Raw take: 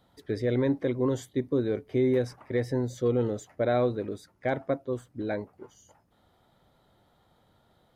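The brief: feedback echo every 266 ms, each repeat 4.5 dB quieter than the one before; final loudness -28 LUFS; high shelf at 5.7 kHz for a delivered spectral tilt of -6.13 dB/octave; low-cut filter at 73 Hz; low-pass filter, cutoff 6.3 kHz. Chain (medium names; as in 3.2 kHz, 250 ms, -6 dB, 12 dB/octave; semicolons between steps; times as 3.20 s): high-pass 73 Hz; low-pass 6.3 kHz; treble shelf 5.7 kHz +3.5 dB; feedback delay 266 ms, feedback 60%, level -4.5 dB; trim -0.5 dB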